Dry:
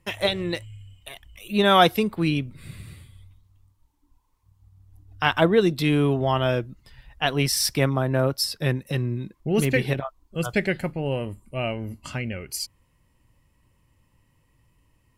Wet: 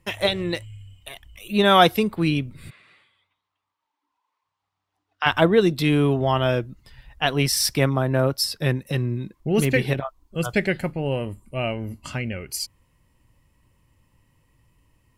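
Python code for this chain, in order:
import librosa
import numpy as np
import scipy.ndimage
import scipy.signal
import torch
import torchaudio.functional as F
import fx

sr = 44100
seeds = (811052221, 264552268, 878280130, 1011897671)

y = fx.bandpass_edges(x, sr, low_hz=750.0, high_hz=fx.line((2.69, 2600.0), (5.25, 4200.0)), at=(2.69, 5.25), fade=0.02)
y = F.gain(torch.from_numpy(y), 1.5).numpy()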